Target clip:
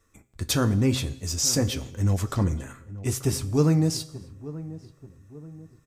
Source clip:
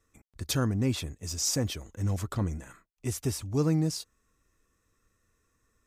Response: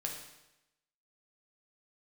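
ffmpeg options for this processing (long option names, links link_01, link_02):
-filter_complex "[0:a]flanger=delay=9.5:depth=1.9:regen=-60:speed=0.96:shape=triangular,asplit=2[link_01][link_02];[link_02]adelay=884,lowpass=frequency=1000:poles=1,volume=-15.5dB,asplit=2[link_03][link_04];[link_04]adelay=884,lowpass=frequency=1000:poles=1,volume=0.47,asplit=2[link_05][link_06];[link_06]adelay=884,lowpass=frequency=1000:poles=1,volume=0.47,asplit=2[link_07][link_08];[link_08]adelay=884,lowpass=frequency=1000:poles=1,volume=0.47[link_09];[link_01][link_03][link_05][link_07][link_09]amix=inputs=5:normalize=0,asplit=2[link_10][link_11];[1:a]atrim=start_sample=2205,afade=type=out:start_time=0.32:duration=0.01,atrim=end_sample=14553,asetrate=38367,aresample=44100[link_12];[link_11][link_12]afir=irnorm=-1:irlink=0,volume=-13dB[link_13];[link_10][link_13]amix=inputs=2:normalize=0,volume=8dB"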